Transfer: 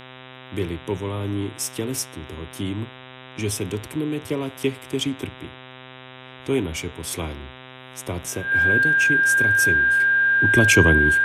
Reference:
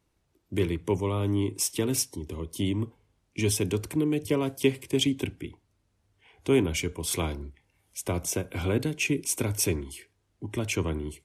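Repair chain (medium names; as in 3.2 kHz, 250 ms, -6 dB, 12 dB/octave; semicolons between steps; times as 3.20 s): de-hum 128.9 Hz, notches 30; band-stop 1.6 kHz, Q 30; gain correction -12 dB, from 10.00 s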